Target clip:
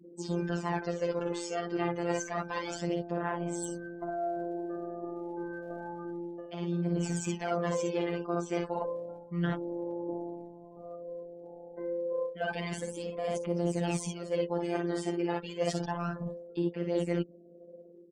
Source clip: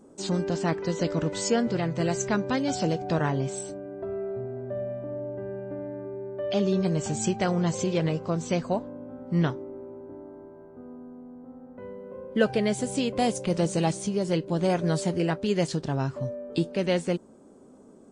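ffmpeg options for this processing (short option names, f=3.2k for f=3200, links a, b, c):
-af "dynaudnorm=f=150:g=5:m=5.5dB,afftfilt=real='re*gte(hypot(re,im),0.01)':imag='im*gte(hypot(re,im),0.01)':win_size=1024:overlap=0.75,bass=f=250:g=-10,treble=f=4k:g=-8,bandreject=f=4k:w=7.2,aecho=1:1:47|59:0.355|0.473,aphaser=in_gain=1:out_gain=1:delay=2.6:decay=0.61:speed=0.3:type=sinusoidal,areverse,acompressor=threshold=-28dB:ratio=16,areverse,afftfilt=real='hypot(re,im)*cos(PI*b)':imag='0':win_size=1024:overlap=0.75,volume=2dB"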